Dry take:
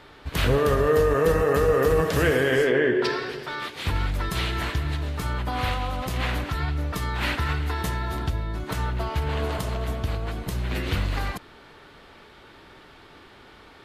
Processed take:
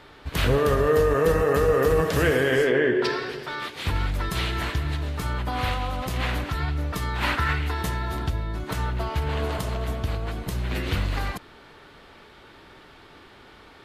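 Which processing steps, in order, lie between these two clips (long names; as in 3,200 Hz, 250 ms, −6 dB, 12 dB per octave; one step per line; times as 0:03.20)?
0:07.22–0:07.67: parametric band 890 Hz → 2,700 Hz +7 dB 0.85 octaves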